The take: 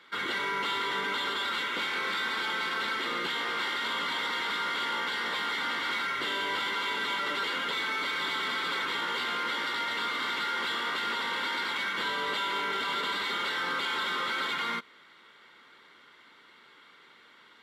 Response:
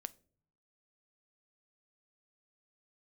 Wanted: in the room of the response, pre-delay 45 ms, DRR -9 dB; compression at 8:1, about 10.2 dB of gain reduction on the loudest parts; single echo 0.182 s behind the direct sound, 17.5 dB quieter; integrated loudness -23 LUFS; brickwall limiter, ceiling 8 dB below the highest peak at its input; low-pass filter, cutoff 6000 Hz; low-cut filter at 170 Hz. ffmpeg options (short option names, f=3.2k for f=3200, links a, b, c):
-filter_complex "[0:a]highpass=170,lowpass=6k,acompressor=threshold=-39dB:ratio=8,alimiter=level_in=13.5dB:limit=-24dB:level=0:latency=1,volume=-13.5dB,aecho=1:1:182:0.133,asplit=2[a][b];[1:a]atrim=start_sample=2205,adelay=45[c];[b][c]afir=irnorm=-1:irlink=0,volume=12.5dB[d];[a][d]amix=inputs=2:normalize=0,volume=11.5dB"